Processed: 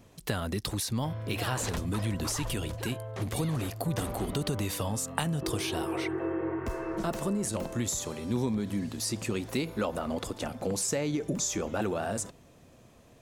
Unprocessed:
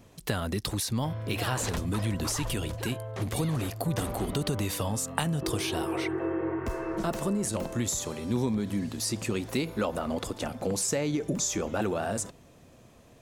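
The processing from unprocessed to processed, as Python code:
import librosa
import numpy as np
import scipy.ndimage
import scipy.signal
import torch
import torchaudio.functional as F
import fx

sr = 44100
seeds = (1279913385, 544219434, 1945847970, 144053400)

y = fx.dmg_crackle(x, sr, seeds[0], per_s=370.0, level_db=-60.0, at=(3.68, 4.59), fade=0.02)
y = y * 10.0 ** (-1.5 / 20.0)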